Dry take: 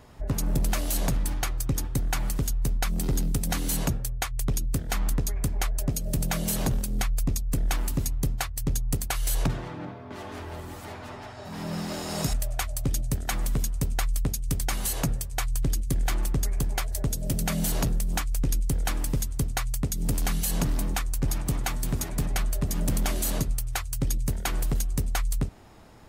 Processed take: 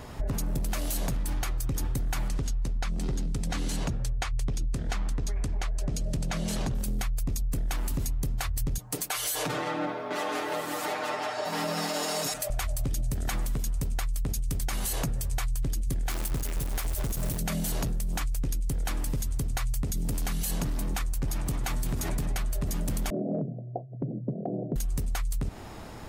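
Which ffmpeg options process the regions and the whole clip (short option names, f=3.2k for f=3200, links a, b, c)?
-filter_complex "[0:a]asettb=1/sr,asplit=3[a][b][c];[a]atrim=end=2.284[d];[b]atrim=start=2.28:end=6.75,asetpts=PTS-STARTPTS,afade=t=in:d=0.004:c=qsin,afade=t=out:st=4.466:d=0.004:c=qsin,lowpass=6.7k,flanger=delay=0:depth=5.7:regen=-67:speed=1.8:shape=triangular[e];[c]atrim=start=6.746[f];[d][e]acrossfade=d=0.004:c1=hsin:c2=qsin[g];[g][f]acrossfade=d=0.004:c1=qsin:c2=hsin,asettb=1/sr,asplit=3[h][i][j];[h]atrim=end=8.784[k];[i]atrim=start=8.78:end=12.5,asetpts=PTS-STARTPTS,afade=t=in:d=0.004:c=qsin,afade=t=out:st=3.716:d=0.004:c=qsin,highpass=350,aecho=1:1:6.6:0.78,atrim=end_sample=164052[l];[j]atrim=start=12.496[m];[k][l]acrossfade=d=0.004:c1=hsin:c2=qsin[n];[n][m]acrossfade=d=0.004:c1=qsin:c2=hsin,asettb=1/sr,asplit=3[o][p][q];[o]atrim=end=16.104[r];[p]atrim=start=16.1:end=17.39,asetpts=PTS-STARTPTS,afade=t=in:d=0.004:c=qsin,afade=t=out:st=1.286:d=0.004:c=qsin,highshelf=f=8.3k:g=10.5,acrusher=bits=2:mode=log:mix=0:aa=0.000001[s];[q]atrim=start=17.386[t];[r][s]acrossfade=d=0.004:c1=hsin:c2=qsin[u];[u][t]acrossfade=d=0.004:c1=qsin:c2=hsin,asettb=1/sr,asplit=3[v][w][x];[v]atrim=end=23.104[y];[w]atrim=start=23.1:end=24.76,asetpts=PTS-STARTPTS,afade=t=in:d=0.004:c=qsin,afade=t=out:st=1.656:d=0.004:c=qsin,asuperpass=centerf=300:order=20:qfactor=0.52,acompressor=threshold=-31dB:ratio=4:attack=3.2:release=140:knee=1:detection=peak[z];[x]atrim=start=24.756[aa];[y][z]acrossfade=d=0.004:c1=hsin:c2=qsin[ab];[ab][aa]acrossfade=d=0.004:c1=qsin:c2=hsin,alimiter=level_in=4dB:limit=-24dB:level=0:latency=1:release=46,volume=-4dB,acompressor=threshold=-35dB:ratio=6,volume=9dB"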